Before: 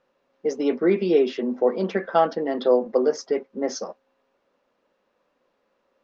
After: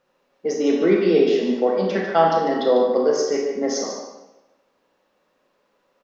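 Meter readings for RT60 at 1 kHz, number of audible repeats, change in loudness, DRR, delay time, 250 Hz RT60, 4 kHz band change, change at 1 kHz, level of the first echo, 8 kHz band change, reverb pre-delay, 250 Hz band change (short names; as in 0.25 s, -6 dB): 1.0 s, 1, +3.0 dB, -1.0 dB, 0.147 s, 1.0 s, +6.5 dB, +5.0 dB, -8.5 dB, n/a, 23 ms, +3.5 dB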